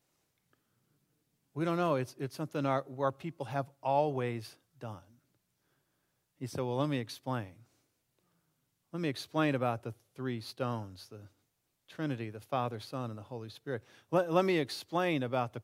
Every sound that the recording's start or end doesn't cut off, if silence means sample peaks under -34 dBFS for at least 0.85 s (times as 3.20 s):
1.57–4.88 s
6.42–7.42 s
8.94–10.81 s